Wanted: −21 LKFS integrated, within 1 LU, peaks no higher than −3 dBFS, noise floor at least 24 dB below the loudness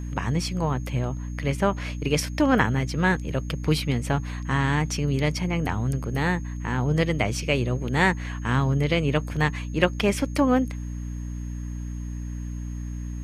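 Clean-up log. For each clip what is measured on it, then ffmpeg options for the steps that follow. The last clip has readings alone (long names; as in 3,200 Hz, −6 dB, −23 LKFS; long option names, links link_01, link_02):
mains hum 60 Hz; hum harmonics up to 300 Hz; level of the hum −29 dBFS; interfering tone 6,500 Hz; level of the tone −53 dBFS; integrated loudness −25.5 LKFS; sample peak −5.0 dBFS; target loudness −21.0 LKFS
→ -af "bandreject=frequency=60:width_type=h:width=4,bandreject=frequency=120:width_type=h:width=4,bandreject=frequency=180:width_type=h:width=4,bandreject=frequency=240:width_type=h:width=4,bandreject=frequency=300:width_type=h:width=4"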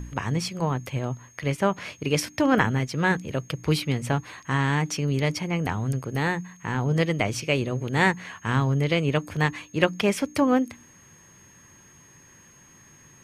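mains hum none found; interfering tone 6,500 Hz; level of the tone −53 dBFS
→ -af "bandreject=frequency=6500:width=30"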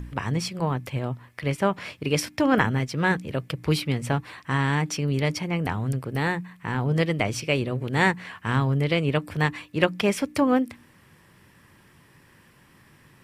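interfering tone none found; integrated loudness −25.5 LKFS; sample peak −5.0 dBFS; target loudness −21.0 LKFS
→ -af "volume=4.5dB,alimiter=limit=-3dB:level=0:latency=1"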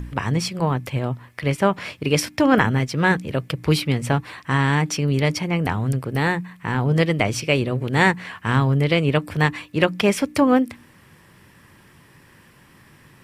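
integrated loudness −21.0 LKFS; sample peak −3.0 dBFS; background noise floor −52 dBFS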